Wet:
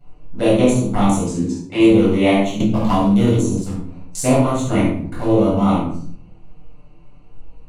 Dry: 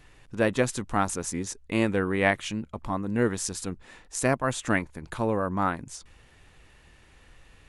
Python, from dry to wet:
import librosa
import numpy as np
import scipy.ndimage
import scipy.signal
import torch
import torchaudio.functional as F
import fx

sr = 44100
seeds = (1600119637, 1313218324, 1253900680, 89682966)

p1 = fx.wiener(x, sr, points=25)
p2 = fx.high_shelf(p1, sr, hz=3800.0, db=7.5)
p3 = fx.env_flanger(p2, sr, rest_ms=7.7, full_db=-25.0)
p4 = fx.bandpass_edges(p3, sr, low_hz=110.0, high_hz=6000.0, at=(1.23, 1.8))
p5 = p4 + fx.room_early_taps(p4, sr, ms=(24, 69), db=(-3.0, -6.0), dry=0)
p6 = fx.room_shoebox(p5, sr, seeds[0], volume_m3=740.0, walls='furnished', distance_m=7.2)
p7 = fx.band_squash(p6, sr, depth_pct=100, at=(2.6, 3.62))
y = F.gain(torch.from_numpy(p7), -1.0).numpy()